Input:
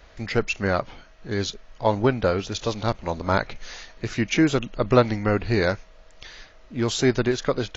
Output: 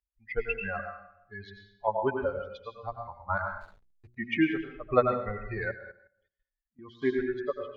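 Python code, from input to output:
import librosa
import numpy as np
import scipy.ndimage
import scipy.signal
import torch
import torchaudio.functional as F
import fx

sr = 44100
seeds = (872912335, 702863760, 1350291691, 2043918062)

y = fx.bin_expand(x, sr, power=3.0)
y = fx.peak_eq(y, sr, hz=150.0, db=-9.5, octaves=1.9)
y = fx.rev_plate(y, sr, seeds[0], rt60_s=0.66, hf_ratio=0.85, predelay_ms=80, drr_db=3.5)
y = fx.level_steps(y, sr, step_db=15, at=(5.71, 7.02))
y = scipy.signal.sosfilt(scipy.signal.butter(4, 2600.0, 'lowpass', fs=sr, output='sos'), y)
y = fx.backlash(y, sr, play_db=-48.0, at=(3.6, 4.16), fade=0.02)
y = fx.hum_notches(y, sr, base_hz=60, count=6)
y = fx.band_squash(y, sr, depth_pct=40, at=(0.79, 1.88))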